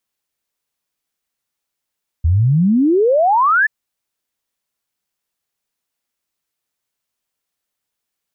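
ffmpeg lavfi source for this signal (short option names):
-f lavfi -i "aevalsrc='0.316*clip(min(t,1.43-t)/0.01,0,1)*sin(2*PI*76*1.43/log(1800/76)*(exp(log(1800/76)*t/1.43)-1))':d=1.43:s=44100"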